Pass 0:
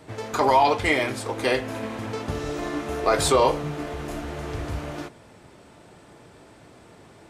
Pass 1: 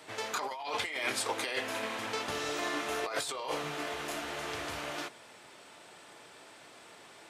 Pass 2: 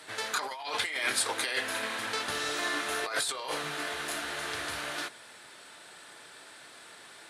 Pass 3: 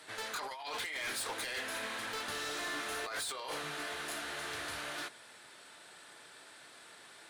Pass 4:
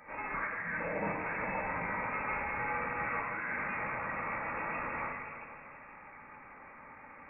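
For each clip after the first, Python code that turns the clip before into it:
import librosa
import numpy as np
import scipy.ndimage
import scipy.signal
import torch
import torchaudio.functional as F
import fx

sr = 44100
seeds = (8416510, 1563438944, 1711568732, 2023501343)

y1 = fx.highpass(x, sr, hz=1200.0, slope=6)
y1 = fx.peak_eq(y1, sr, hz=3200.0, db=2.5, octaves=0.89)
y1 = fx.over_compress(y1, sr, threshold_db=-32.0, ratio=-1.0)
y1 = y1 * librosa.db_to_amplitude(-2.0)
y2 = fx.graphic_eq_15(y1, sr, hz=(1600, 4000, 10000), db=(8, 7, 11))
y2 = y2 * librosa.db_to_amplitude(-1.5)
y3 = np.clip(10.0 ** (30.5 / 20.0) * y2, -1.0, 1.0) / 10.0 ** (30.5 / 20.0)
y3 = y3 * librosa.db_to_amplitude(-4.5)
y4 = fx.echo_feedback(y3, sr, ms=160, feedback_pct=58, wet_db=-11.5)
y4 = fx.room_shoebox(y4, sr, seeds[0], volume_m3=2300.0, walls='mixed', distance_m=3.1)
y4 = fx.freq_invert(y4, sr, carrier_hz=2600)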